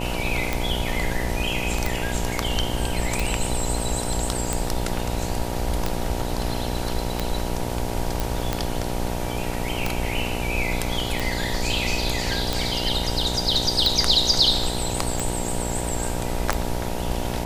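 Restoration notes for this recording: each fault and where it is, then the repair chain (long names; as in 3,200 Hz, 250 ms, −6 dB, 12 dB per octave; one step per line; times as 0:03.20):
mains buzz 60 Hz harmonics 16 −29 dBFS
scratch tick 45 rpm −8 dBFS
0:08.20: click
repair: click removal
hum removal 60 Hz, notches 16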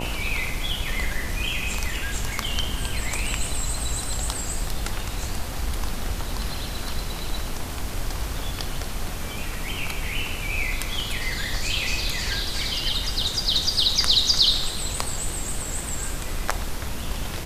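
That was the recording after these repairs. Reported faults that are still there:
none of them is left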